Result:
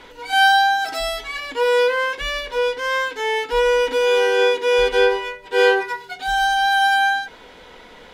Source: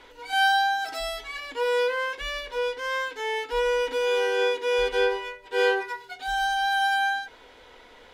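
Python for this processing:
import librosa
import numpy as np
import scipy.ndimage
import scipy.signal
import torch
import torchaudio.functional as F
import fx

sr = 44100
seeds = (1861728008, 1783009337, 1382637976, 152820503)

y = fx.peak_eq(x, sr, hz=180.0, db=11.5, octaves=0.51)
y = y * librosa.db_to_amplitude(7.0)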